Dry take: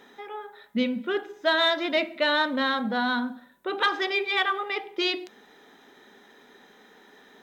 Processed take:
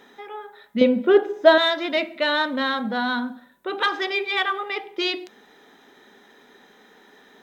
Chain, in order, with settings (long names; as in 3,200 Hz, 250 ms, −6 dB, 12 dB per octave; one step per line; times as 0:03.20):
0:00.81–0:01.58: parametric band 490 Hz +13 dB 1.9 octaves
level +1.5 dB